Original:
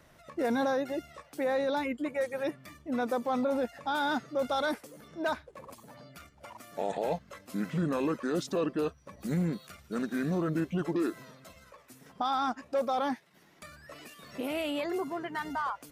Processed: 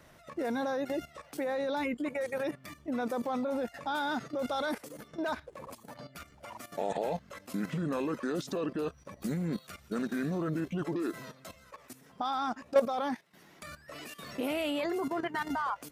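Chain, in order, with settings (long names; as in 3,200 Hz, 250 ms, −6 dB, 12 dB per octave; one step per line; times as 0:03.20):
low-shelf EQ 75 Hz −2.5 dB
output level in coarse steps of 13 dB
level +7 dB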